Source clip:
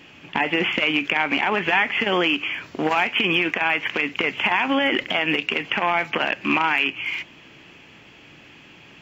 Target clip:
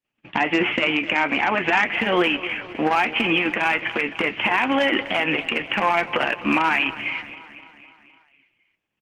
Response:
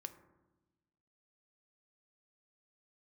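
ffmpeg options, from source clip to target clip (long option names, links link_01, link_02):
-filter_complex "[0:a]agate=range=-46dB:threshold=-42dB:ratio=16:detection=peak,lowpass=3100,bandreject=frequency=410:width=12,flanger=delay=8:depth=1.8:regen=53:speed=1.3:shape=sinusoidal,asoftclip=type=hard:threshold=-16dB,asplit=2[link_01][link_02];[link_02]aecho=0:1:255|510|765|1020|1275|1530:0.178|0.103|0.0598|0.0347|0.0201|0.0117[link_03];[link_01][link_03]amix=inputs=2:normalize=0,volume=6dB" -ar 48000 -c:a libopus -b:a 20k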